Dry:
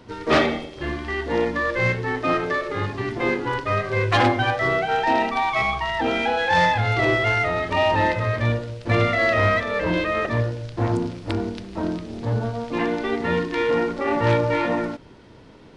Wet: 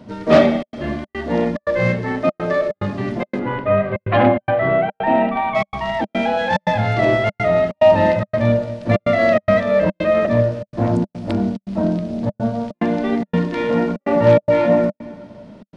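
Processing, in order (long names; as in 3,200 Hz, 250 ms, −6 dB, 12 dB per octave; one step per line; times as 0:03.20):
0:03.39–0:05.55: low-pass filter 3,000 Hz 24 dB per octave
dense smooth reverb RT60 1.9 s, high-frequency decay 0.85×, pre-delay 100 ms, DRR 16 dB
gate pattern "xxxxxx.xxx.xxxx." 144 BPM −60 dB
hollow resonant body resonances 200/600 Hz, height 15 dB, ringing for 40 ms
level −1.5 dB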